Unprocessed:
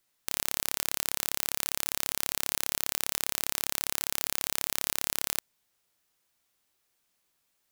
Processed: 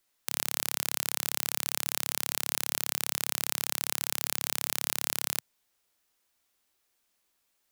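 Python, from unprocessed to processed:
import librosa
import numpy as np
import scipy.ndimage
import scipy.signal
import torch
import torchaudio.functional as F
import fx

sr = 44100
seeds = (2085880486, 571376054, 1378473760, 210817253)

y = fx.peak_eq(x, sr, hz=140.0, db=-12.5, octaves=0.38)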